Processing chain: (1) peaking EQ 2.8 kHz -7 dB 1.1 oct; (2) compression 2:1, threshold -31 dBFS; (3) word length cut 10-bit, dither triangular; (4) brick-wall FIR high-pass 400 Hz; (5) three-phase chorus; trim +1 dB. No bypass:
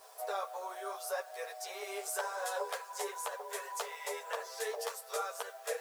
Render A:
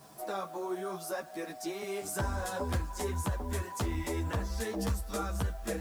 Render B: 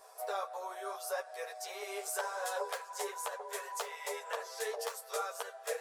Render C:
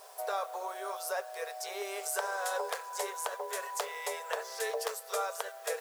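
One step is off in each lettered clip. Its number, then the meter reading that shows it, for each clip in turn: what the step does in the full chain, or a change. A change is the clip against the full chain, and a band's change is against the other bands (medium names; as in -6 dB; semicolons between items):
4, 500 Hz band +2.0 dB; 3, distortion -28 dB; 5, crest factor change +2.0 dB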